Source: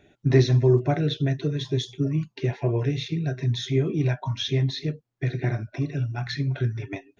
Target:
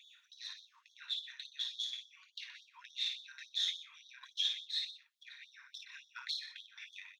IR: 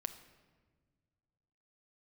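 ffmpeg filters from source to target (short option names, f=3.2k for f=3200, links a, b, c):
-filter_complex "[0:a]aeval=exprs='if(lt(val(0),0),0.708*val(0),val(0))':c=same,acompressor=threshold=-32dB:ratio=6,asplit=2[a][b];[b]adelay=122.4,volume=-12dB,highshelf=f=4k:g=-2.76[c];[a][c]amix=inputs=2:normalize=0,alimiter=level_in=8.5dB:limit=-24dB:level=0:latency=1:release=496,volume=-8.5dB,equalizer=f=3.6k:t=o:w=0.52:g=8,asplit=2[d][e];[e]aecho=0:1:24|55:0.299|0.531[f];[d][f]amix=inputs=2:normalize=0,afftfilt=real='re*gte(b*sr/1024,880*pow(3300/880,0.5+0.5*sin(2*PI*3.5*pts/sr)))':imag='im*gte(b*sr/1024,880*pow(3300/880,0.5+0.5*sin(2*PI*3.5*pts/sr)))':win_size=1024:overlap=0.75,volume=4.5dB"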